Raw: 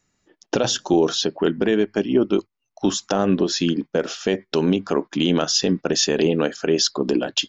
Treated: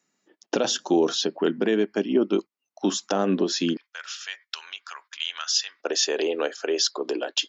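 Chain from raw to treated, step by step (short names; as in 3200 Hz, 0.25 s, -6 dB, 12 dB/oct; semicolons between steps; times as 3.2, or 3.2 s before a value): HPF 190 Hz 24 dB/oct, from 3.77 s 1300 Hz, from 5.8 s 380 Hz; gain -3 dB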